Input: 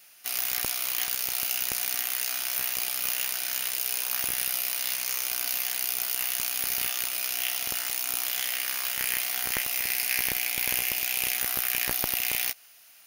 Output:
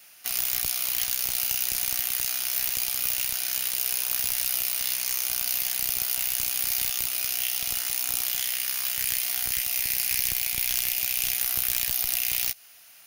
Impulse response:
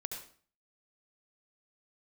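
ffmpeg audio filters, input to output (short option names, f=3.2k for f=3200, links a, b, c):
-filter_complex "[0:a]aeval=exprs='(mod(4.22*val(0)+1,2)-1)/4.22':c=same,lowshelf=f=120:g=6,acrossover=split=170|3000[a][b][c];[b]acompressor=threshold=-43dB:ratio=4[d];[a][d][c]amix=inputs=3:normalize=0,volume=2.5dB"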